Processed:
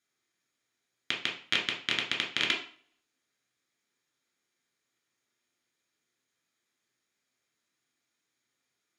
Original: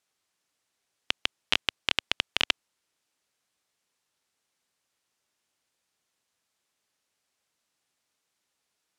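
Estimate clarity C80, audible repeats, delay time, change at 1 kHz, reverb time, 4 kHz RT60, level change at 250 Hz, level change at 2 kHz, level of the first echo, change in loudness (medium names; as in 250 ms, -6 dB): 13.0 dB, no echo, no echo, -3.0 dB, 0.45 s, 0.40 s, +3.0 dB, 0.0 dB, no echo, -1.5 dB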